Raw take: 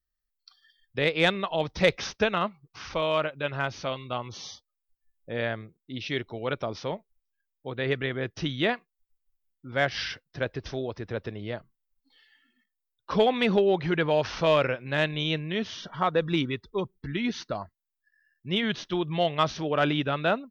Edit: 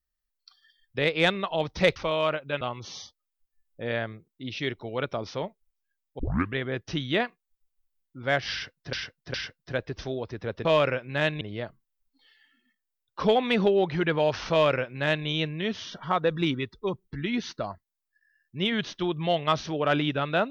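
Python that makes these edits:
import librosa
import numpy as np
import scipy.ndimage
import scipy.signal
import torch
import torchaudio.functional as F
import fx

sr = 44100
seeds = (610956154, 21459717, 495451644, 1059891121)

y = fx.edit(x, sr, fx.cut(start_s=1.96, length_s=0.91),
    fx.cut(start_s=3.52, length_s=0.58),
    fx.tape_start(start_s=7.68, length_s=0.35),
    fx.repeat(start_s=10.01, length_s=0.41, count=3),
    fx.duplicate(start_s=14.42, length_s=0.76, to_s=11.32), tone=tone)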